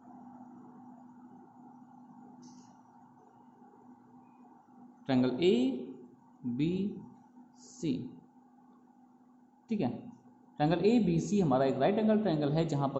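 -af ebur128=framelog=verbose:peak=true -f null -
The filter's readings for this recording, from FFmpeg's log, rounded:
Integrated loudness:
  I:         -30.7 LUFS
  Threshold: -44.6 LUFS
Loudness range:
  LRA:        23.2 LU
  Threshold: -55.5 LUFS
  LRA low:   -53.5 LUFS
  LRA high:  -30.2 LUFS
True peak:
  Peak:      -14.8 dBFS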